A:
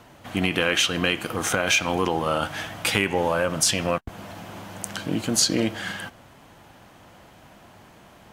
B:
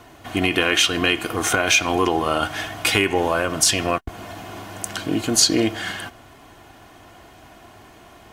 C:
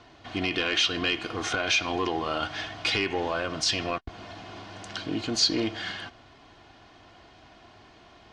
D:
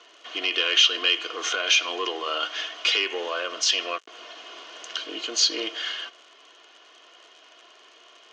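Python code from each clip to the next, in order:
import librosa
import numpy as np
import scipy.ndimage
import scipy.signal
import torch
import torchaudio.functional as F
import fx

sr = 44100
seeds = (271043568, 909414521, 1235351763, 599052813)

y1 = x + 0.5 * np.pad(x, (int(2.8 * sr / 1000.0), 0))[:len(x)]
y1 = F.gain(torch.from_numpy(y1), 3.0).numpy()
y2 = 10.0 ** (-10.5 / 20.0) * np.tanh(y1 / 10.0 ** (-10.5 / 20.0))
y2 = fx.ladder_lowpass(y2, sr, hz=5600.0, resonance_pct=40)
y2 = F.gain(torch.from_numpy(y2), 1.0).numpy()
y3 = fx.dmg_crackle(y2, sr, seeds[0], per_s=91.0, level_db=-41.0)
y3 = fx.cabinet(y3, sr, low_hz=400.0, low_slope=24, high_hz=7500.0, hz=(470.0, 800.0, 1200.0, 3000.0, 6400.0), db=(3, -9, 4, 10, 8))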